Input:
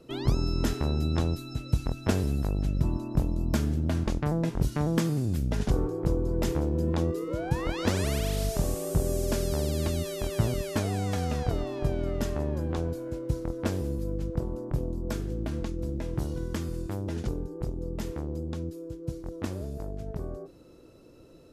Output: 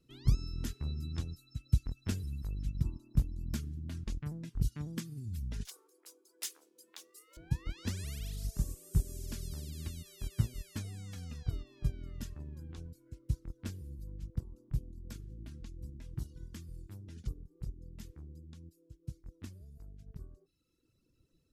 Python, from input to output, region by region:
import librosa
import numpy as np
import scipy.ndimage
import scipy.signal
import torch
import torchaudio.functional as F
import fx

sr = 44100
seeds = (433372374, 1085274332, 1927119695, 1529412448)

y = fx.chain(x, sr, fx.highpass(hz=390.0, slope=24),
    fx.tilt_eq(slope=4.5),
    fx.resample_linear(factor=2), at=(5.65, 7.37))
y = fx.dereverb_blind(y, sr, rt60_s=1.2)
y = fx.tone_stack(y, sr, knobs='6-0-2')
y = fx.upward_expand(y, sr, threshold_db=-53.0, expansion=1.5)
y = y * librosa.db_to_amplitude(12.0)